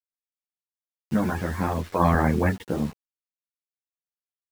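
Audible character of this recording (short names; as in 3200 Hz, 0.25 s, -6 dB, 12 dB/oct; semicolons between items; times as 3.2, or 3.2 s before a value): random-step tremolo 2 Hz, depth 85%; a quantiser's noise floor 8-bit, dither none; a shimmering, thickened sound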